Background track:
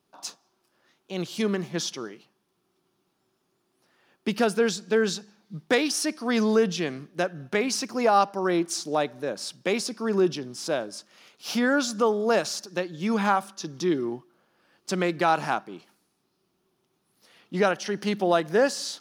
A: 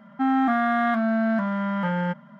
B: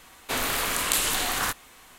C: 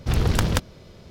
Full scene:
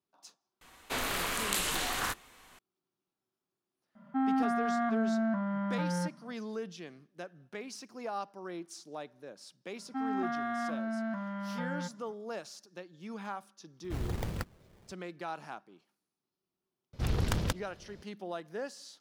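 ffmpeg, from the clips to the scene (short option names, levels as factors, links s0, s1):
-filter_complex "[1:a]asplit=2[s0][s1];[3:a]asplit=2[s2][s3];[0:a]volume=0.133[s4];[2:a]highshelf=f=7900:g=-6[s5];[s0]highshelf=f=2000:g=-11.5[s6];[s2]acrusher=samples=19:mix=1:aa=0.000001:lfo=1:lforange=30.4:lforate=3.4[s7];[s5]atrim=end=1.98,asetpts=PTS-STARTPTS,volume=0.531,afade=t=in:d=0.004:c=hsin,afade=t=out:st=1.976:d=0.004:c=hsin,adelay=610[s8];[s6]atrim=end=2.39,asetpts=PTS-STARTPTS,volume=0.447,afade=t=in:d=0.004:c=hsin,afade=t=out:st=2.386:d=0.004:c=hsin,adelay=3950[s9];[s1]atrim=end=2.39,asetpts=PTS-STARTPTS,volume=0.237,afade=t=in:d=0.004:c=hsin,afade=t=out:st=2.386:d=0.004:c=hsin,adelay=9750[s10];[s7]atrim=end=1.1,asetpts=PTS-STARTPTS,volume=0.188,afade=t=in:d=0.004:c=hsin,afade=t=out:st=1.096:d=0.004:c=hsin,adelay=13840[s11];[s3]atrim=end=1.1,asetpts=PTS-STARTPTS,volume=0.335,afade=t=in:d=0.004:c=hsin,afade=t=out:st=1.096:d=0.004:c=hsin,adelay=16930[s12];[s4][s8][s9][s10][s11][s12]amix=inputs=6:normalize=0"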